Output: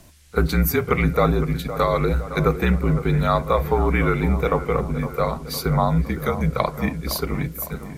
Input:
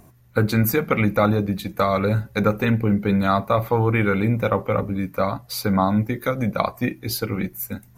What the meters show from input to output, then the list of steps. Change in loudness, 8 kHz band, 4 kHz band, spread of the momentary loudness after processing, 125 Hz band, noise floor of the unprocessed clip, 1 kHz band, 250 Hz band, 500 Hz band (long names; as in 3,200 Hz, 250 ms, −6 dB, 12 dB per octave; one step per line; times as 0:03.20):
0.0 dB, +0.5 dB, 0.0 dB, 6 LU, +1.0 dB, −51 dBFS, 0.0 dB, −2.0 dB, 0.0 dB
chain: noise in a band 1,600–11,000 Hz −58 dBFS
echo ahead of the sound 34 ms −18.5 dB
frequency shifter −47 Hz
on a send: delay with a low-pass on its return 511 ms, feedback 57%, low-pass 2,000 Hz, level −12 dB